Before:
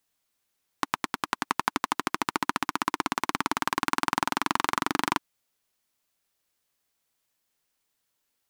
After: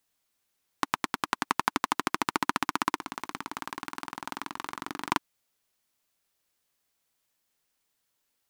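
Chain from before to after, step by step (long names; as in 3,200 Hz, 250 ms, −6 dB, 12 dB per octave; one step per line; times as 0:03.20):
0:02.98–0:05.10: compressor whose output falls as the input rises −37 dBFS, ratio −1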